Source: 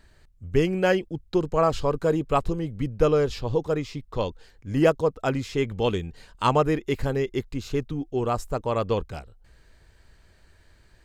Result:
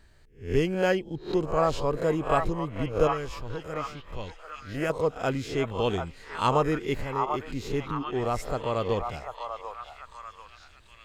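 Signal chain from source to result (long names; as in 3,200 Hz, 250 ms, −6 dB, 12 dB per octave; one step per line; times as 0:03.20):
peak hold with a rise ahead of every peak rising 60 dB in 0.34 s
0:03.07–0:04.90: octave-band graphic EQ 125/250/500/1,000/2,000/4,000 Hz −5/−5/−9/−8/+4/−9 dB
0:06.96–0:07.46: downward compressor, threshold −26 dBFS, peak gain reduction 7.5 dB
on a send: echo through a band-pass that steps 741 ms, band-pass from 950 Hz, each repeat 0.7 octaves, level −2.5 dB
on the sum: level −3.5 dB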